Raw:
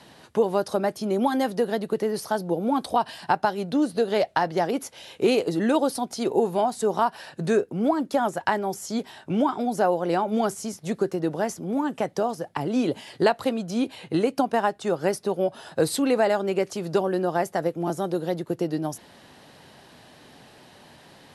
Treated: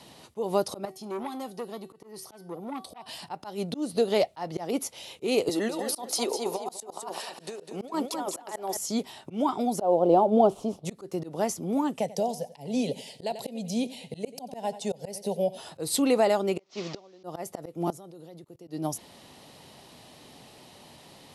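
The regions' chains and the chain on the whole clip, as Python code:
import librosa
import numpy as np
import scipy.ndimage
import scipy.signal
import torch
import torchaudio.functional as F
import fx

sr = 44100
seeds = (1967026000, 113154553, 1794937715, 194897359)

y = fx.chain(x, sr, fx.hum_notches(base_hz=50, count=3),
    fx.comb_fb(f0_hz=380.0, decay_s=0.35, harmonics='all', damping=0.0, mix_pct=70),
    fx.transformer_sat(knee_hz=1100.0), at=(0.85, 3.06))
y = fx.chain(y, sr, fx.highpass(hz=400.0, slope=12),
    fx.over_compress(threshold_db=-28.0, ratio=-0.5),
    fx.echo_feedback(ms=203, feedback_pct=31, wet_db=-7.5), at=(5.49, 8.77))
y = fx.chain(y, sr, fx.cvsd(bps=64000),
    fx.curve_eq(hz=(140.0, 670.0, 1200.0, 2000.0, 3100.0, 6400.0), db=(0, 8, -3, -19, -6, -20)), at=(9.81, 10.85))
y = fx.chain(y, sr, fx.fixed_phaser(hz=330.0, stages=6),
    fx.echo_feedback(ms=91, feedback_pct=33, wet_db=-17.5), at=(11.99, 15.58))
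y = fx.chain(y, sr, fx.delta_mod(bps=32000, step_db=-32.0),
    fx.highpass(hz=290.0, slope=6),
    fx.gate_flip(shuts_db=-22.0, range_db=-25), at=(16.59, 17.24))
y = fx.chain(y, sr, fx.level_steps(step_db=22),
    fx.upward_expand(threshold_db=-55.0, expansion=1.5), at=(17.9, 18.68))
y = fx.high_shelf(y, sr, hz=4700.0, db=5.5)
y = fx.auto_swell(y, sr, attack_ms=187.0)
y = fx.peak_eq(y, sr, hz=1600.0, db=-11.0, octaves=0.3)
y = y * librosa.db_to_amplitude(-1.0)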